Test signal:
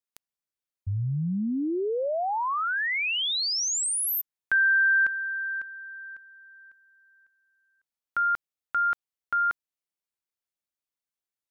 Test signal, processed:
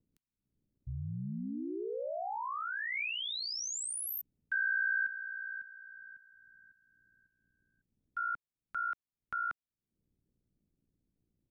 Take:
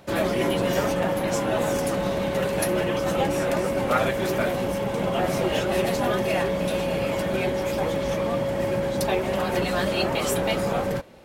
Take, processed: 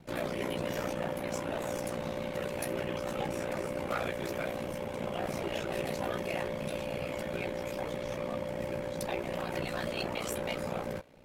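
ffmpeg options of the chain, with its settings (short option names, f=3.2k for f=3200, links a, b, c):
-filter_complex "[0:a]equalizer=f=2.3k:t=o:w=0.36:g=3,acrossover=split=280|5100[a][b][c];[a]acompressor=mode=upward:threshold=-35dB:ratio=2.5:attack=1.6:release=269:knee=2.83:detection=peak[d];[d][b][c]amix=inputs=3:normalize=0,volume=16.5dB,asoftclip=hard,volume=-16.5dB,aeval=exprs='val(0)*sin(2*PI*30*n/s)':c=same,volume=-8dB"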